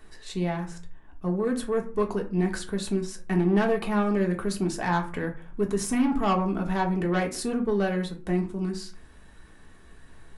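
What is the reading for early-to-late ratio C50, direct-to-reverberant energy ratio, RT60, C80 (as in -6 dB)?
12.5 dB, 1.5 dB, 0.40 s, 17.5 dB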